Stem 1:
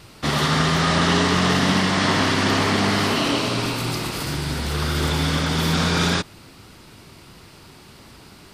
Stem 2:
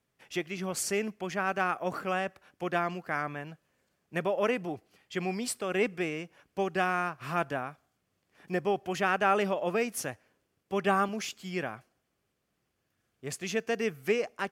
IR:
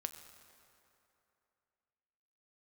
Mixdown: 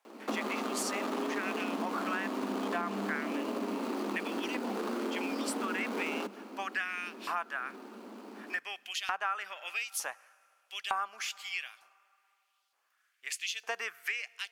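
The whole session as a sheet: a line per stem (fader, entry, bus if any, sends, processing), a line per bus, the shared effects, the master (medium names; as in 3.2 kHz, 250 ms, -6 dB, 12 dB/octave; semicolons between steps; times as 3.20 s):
+1.0 dB, 0.05 s, send -8 dB, median filter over 25 samples; Chebyshev high-pass 200 Hz, order 10; compression 3:1, threshold -31 dBFS, peak gain reduction 9 dB
+1.0 dB, 0.00 s, send -16.5 dB, LFO high-pass saw up 1.1 Hz 820–4000 Hz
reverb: on, RT60 2.9 s, pre-delay 6 ms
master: compression 4:1, threshold -32 dBFS, peak gain reduction 14.5 dB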